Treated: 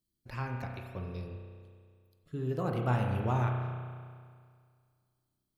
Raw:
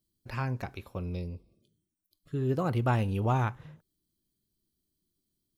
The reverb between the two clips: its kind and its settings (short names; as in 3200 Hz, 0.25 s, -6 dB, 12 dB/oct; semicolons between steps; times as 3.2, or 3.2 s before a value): spring tank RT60 2 s, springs 32 ms, chirp 65 ms, DRR 1.5 dB; gain -5 dB